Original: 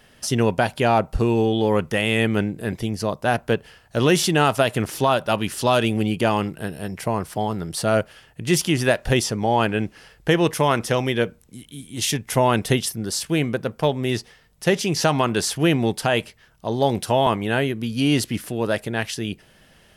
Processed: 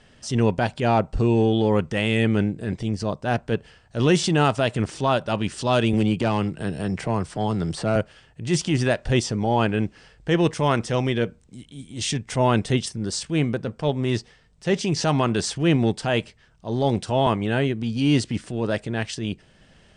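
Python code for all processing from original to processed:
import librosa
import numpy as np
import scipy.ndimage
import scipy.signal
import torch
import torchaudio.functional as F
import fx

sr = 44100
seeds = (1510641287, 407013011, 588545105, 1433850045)

y = fx.chain(x, sr, fx.overload_stage(gain_db=13.0),
    fx.band_squash(depth_pct=70), at=(5.93, 7.96))
y = scipy.signal.sosfilt(scipy.signal.ellip(4, 1.0, 40, 8700.0, 'lowpass', fs=sr, output='sos'), y)
y = fx.low_shelf(y, sr, hz=350.0, db=6.0)
y = fx.transient(y, sr, attack_db=-7, sustain_db=-2)
y = F.gain(torch.from_numpy(y), -1.5).numpy()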